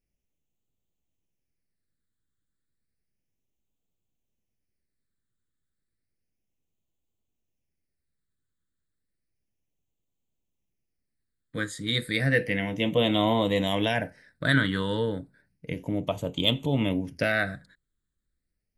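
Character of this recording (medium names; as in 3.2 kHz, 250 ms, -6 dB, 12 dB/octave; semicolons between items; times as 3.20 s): phasing stages 8, 0.32 Hz, lowest notch 770–1600 Hz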